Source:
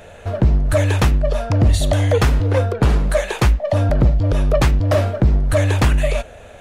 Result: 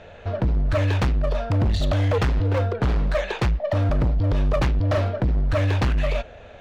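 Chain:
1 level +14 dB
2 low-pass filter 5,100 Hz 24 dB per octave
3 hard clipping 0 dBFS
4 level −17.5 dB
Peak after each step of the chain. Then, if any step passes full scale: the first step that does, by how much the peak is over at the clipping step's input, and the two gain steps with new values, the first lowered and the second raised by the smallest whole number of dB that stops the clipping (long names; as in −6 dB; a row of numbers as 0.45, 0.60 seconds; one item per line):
+7.0, +7.0, 0.0, −17.5 dBFS
step 1, 7.0 dB
step 1 +7 dB, step 4 −10.5 dB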